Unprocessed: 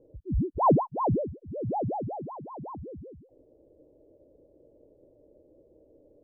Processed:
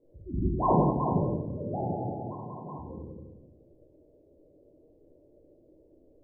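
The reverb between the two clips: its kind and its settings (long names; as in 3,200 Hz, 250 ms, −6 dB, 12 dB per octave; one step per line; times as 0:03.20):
rectangular room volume 420 cubic metres, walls mixed, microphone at 3.1 metres
level −10 dB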